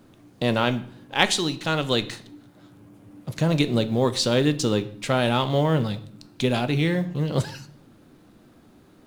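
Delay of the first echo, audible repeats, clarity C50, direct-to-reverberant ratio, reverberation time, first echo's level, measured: no echo, no echo, 16.0 dB, 10.5 dB, 0.60 s, no echo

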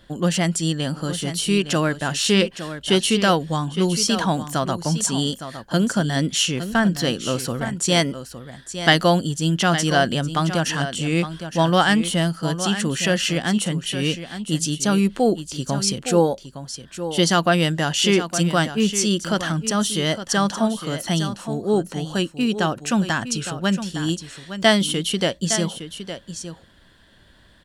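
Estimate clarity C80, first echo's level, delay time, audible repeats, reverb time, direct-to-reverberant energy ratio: no reverb, -11.0 dB, 862 ms, 1, no reverb, no reverb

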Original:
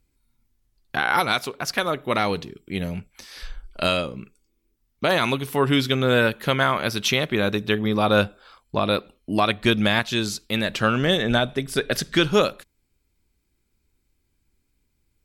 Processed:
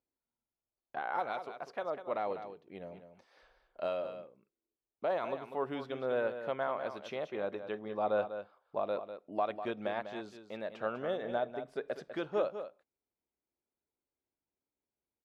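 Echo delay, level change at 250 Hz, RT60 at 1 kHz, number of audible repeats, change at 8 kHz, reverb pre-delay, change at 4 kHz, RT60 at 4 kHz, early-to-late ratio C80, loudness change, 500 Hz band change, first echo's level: 198 ms, -20.0 dB, no reverb, 1, under -30 dB, no reverb, -27.5 dB, no reverb, no reverb, -15.0 dB, -10.5 dB, -10.0 dB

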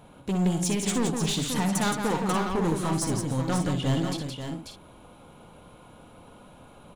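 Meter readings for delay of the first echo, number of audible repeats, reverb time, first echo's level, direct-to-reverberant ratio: 61 ms, 5, no reverb, -8.0 dB, no reverb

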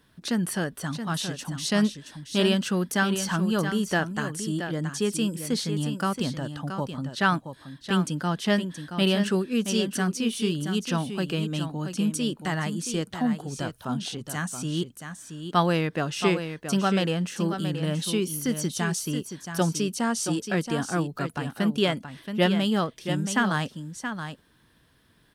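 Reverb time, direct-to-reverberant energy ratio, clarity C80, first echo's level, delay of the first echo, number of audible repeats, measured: no reverb, no reverb, no reverb, -8.5 dB, 675 ms, 1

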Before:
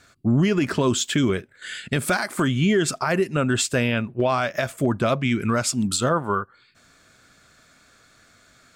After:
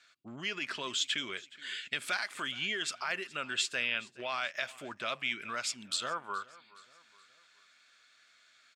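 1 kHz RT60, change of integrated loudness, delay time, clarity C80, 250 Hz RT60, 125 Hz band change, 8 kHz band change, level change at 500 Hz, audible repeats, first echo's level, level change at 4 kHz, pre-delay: no reverb, -12.0 dB, 421 ms, no reverb, no reverb, -31.0 dB, -12.0 dB, -20.0 dB, 3, -21.0 dB, -4.0 dB, no reverb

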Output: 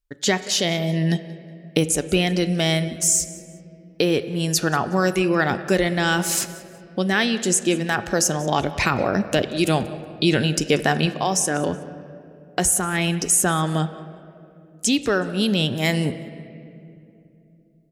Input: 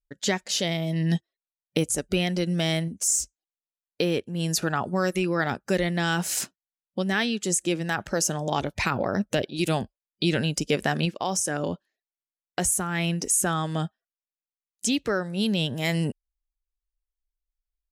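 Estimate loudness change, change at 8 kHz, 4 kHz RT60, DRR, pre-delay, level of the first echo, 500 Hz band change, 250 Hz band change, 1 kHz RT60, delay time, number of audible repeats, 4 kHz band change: +5.0 dB, +5.0 dB, 1.5 s, 11.0 dB, 3 ms, -20.0 dB, +5.5 dB, +5.0 dB, 2.3 s, 185 ms, 1, +5.0 dB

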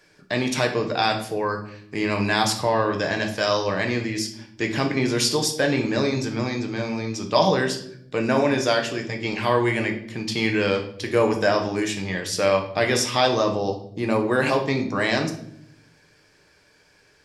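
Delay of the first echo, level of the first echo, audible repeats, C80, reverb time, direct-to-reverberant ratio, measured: no echo, no echo, no echo, 13.0 dB, 0.70 s, 2.5 dB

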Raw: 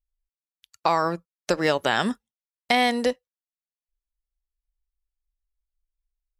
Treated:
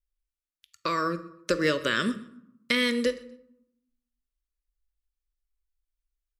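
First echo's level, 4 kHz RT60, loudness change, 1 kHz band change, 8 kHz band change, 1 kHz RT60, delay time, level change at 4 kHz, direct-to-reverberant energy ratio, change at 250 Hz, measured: -21.5 dB, 0.50 s, -3.5 dB, -9.0 dB, -2.5 dB, 0.80 s, 126 ms, -2.0 dB, 10.0 dB, -1.0 dB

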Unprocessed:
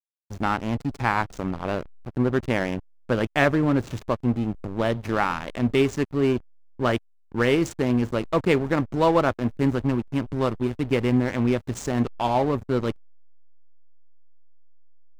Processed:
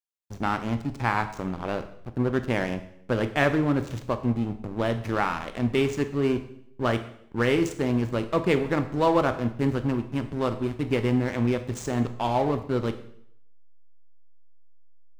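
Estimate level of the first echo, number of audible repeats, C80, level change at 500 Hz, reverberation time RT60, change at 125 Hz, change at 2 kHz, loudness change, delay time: no echo, no echo, 15.0 dB, -2.0 dB, 0.65 s, -1.5 dB, -2.0 dB, -2.0 dB, no echo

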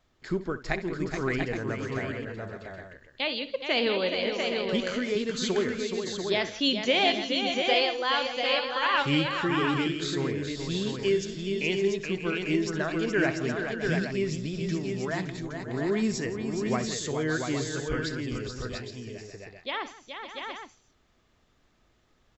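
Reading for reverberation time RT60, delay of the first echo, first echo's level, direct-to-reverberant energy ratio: no reverb, 64 ms, -14.5 dB, no reverb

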